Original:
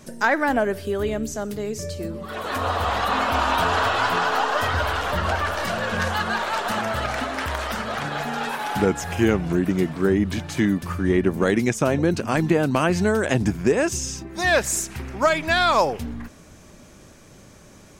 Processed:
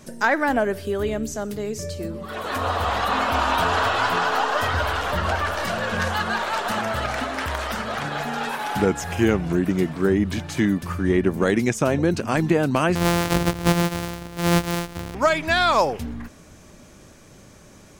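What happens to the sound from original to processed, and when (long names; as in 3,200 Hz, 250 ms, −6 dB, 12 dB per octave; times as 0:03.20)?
0:12.95–0:15.15: samples sorted by size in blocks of 256 samples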